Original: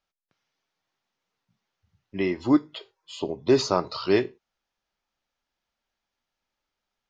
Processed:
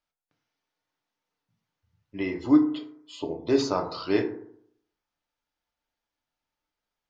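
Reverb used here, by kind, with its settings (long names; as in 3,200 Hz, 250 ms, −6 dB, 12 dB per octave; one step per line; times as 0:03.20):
feedback delay network reverb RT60 0.67 s, low-frequency decay 1.05×, high-frequency decay 0.35×, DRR 3 dB
level −5 dB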